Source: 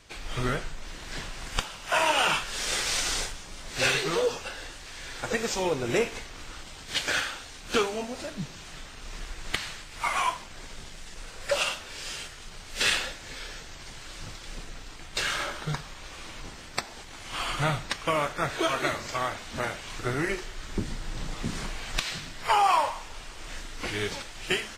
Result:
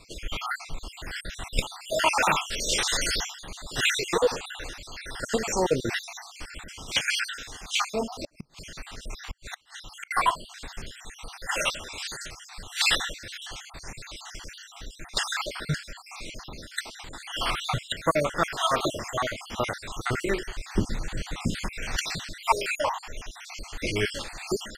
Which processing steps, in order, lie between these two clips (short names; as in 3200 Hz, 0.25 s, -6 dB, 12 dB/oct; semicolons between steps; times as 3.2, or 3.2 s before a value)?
random spectral dropouts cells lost 57%; 8.06–10.11 flipped gate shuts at -29 dBFS, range -33 dB; gain +5.5 dB